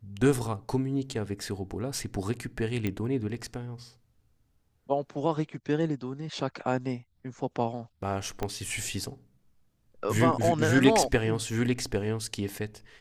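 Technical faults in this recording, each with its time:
2.87 s: pop -17 dBFS
8.43 s: pop -17 dBFS

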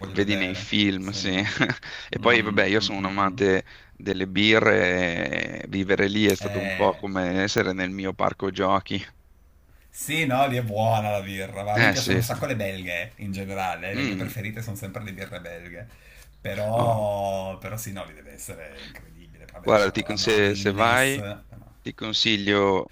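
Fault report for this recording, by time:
4.13–4.14 s: dropout 7.8 ms
7.58 s: pop -8 dBFS
19.76–20.39 s: clipped -15.5 dBFS

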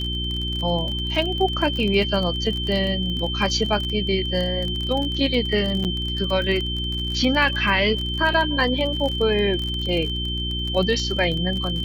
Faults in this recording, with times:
crackle 33 per s -25 dBFS
hum 60 Hz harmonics 6 -28 dBFS
whine 3.1 kHz -27 dBFS
5.84–5.85 s: dropout 8.3 ms

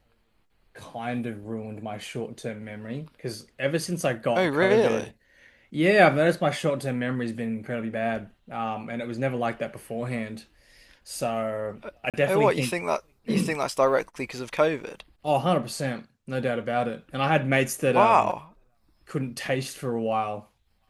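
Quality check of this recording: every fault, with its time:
12.10–12.14 s: dropout 37 ms

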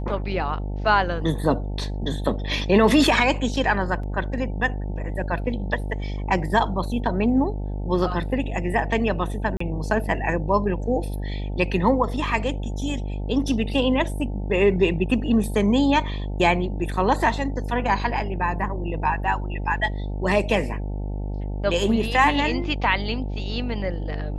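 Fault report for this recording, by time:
buzz 50 Hz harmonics 18 -28 dBFS
4.03 s: dropout 3.8 ms
9.57–9.60 s: dropout 34 ms

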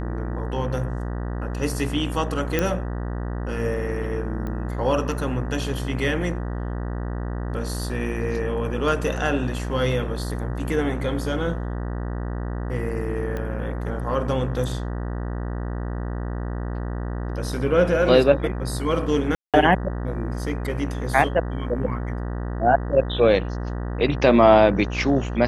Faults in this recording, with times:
buzz 60 Hz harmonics 32 -28 dBFS
2.59 s: pop -8 dBFS
4.47 s: pop -20 dBFS
13.37 s: pop -18 dBFS
19.35–19.54 s: dropout 187 ms

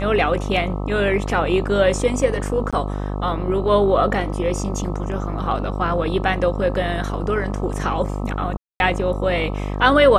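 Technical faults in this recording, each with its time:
buzz 50 Hz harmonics 26 -25 dBFS
2.71–2.73 s: dropout 16 ms
8.57–8.80 s: dropout 231 ms

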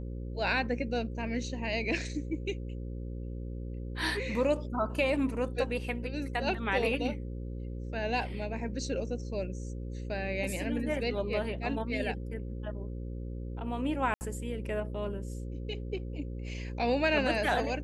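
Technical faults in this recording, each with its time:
buzz 60 Hz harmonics 9 -38 dBFS
14.14–14.21 s: dropout 69 ms

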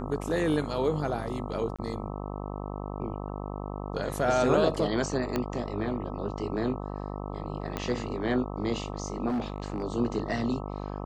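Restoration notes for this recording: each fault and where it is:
buzz 50 Hz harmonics 26 -36 dBFS
1.76–1.79 s: dropout 26 ms
5.36 s: pop -15 dBFS
7.77 s: pop -16 dBFS
9.28–9.83 s: clipped -26 dBFS

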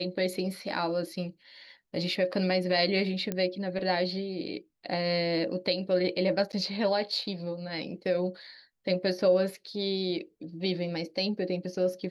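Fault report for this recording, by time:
3.32 s: pop -17 dBFS
6.52–6.53 s: dropout 9 ms

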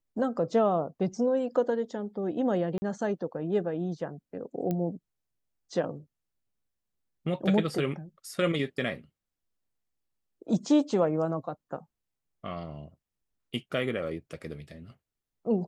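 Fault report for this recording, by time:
2.78–2.82 s: dropout 40 ms
4.71 s: pop -19 dBFS

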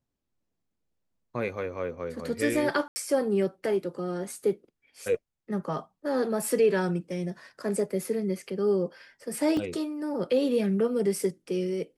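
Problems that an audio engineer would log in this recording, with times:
2.88–2.96 s: dropout 80 ms
9.57 s: dropout 2.5 ms

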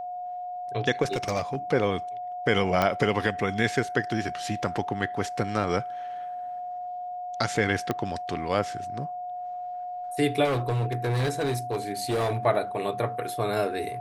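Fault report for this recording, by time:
whine 720 Hz -32 dBFS
1.02–1.56 s: clipped -21.5 dBFS
2.82 s: pop -10 dBFS
7.91 s: pop -13 dBFS
10.44–12.46 s: clipped -22.5 dBFS

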